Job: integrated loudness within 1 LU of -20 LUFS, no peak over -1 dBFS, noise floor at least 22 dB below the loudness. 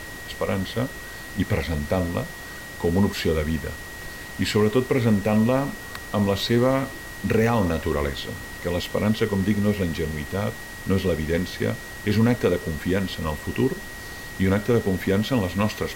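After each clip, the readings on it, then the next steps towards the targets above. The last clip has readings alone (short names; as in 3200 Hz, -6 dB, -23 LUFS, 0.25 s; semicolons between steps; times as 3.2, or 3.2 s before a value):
steady tone 1900 Hz; tone level -38 dBFS; noise floor -37 dBFS; noise floor target -46 dBFS; loudness -24.0 LUFS; peak -9.5 dBFS; loudness target -20.0 LUFS
-> notch 1900 Hz, Q 30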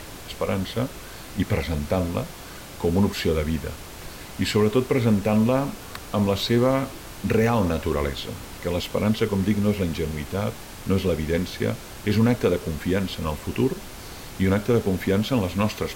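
steady tone none; noise floor -40 dBFS; noise floor target -47 dBFS
-> noise print and reduce 7 dB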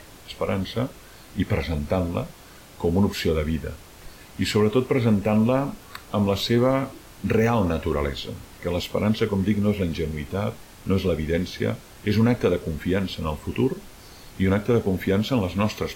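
noise floor -46 dBFS; noise floor target -47 dBFS
-> noise print and reduce 6 dB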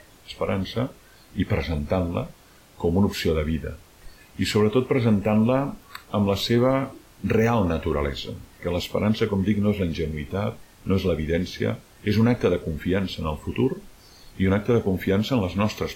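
noise floor -52 dBFS; loudness -24.5 LUFS; peak -9.5 dBFS; loudness target -20.0 LUFS
-> gain +4.5 dB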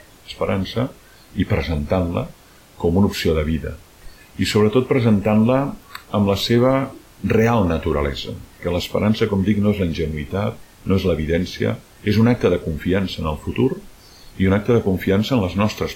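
loudness -20.0 LUFS; peak -5.0 dBFS; noise floor -47 dBFS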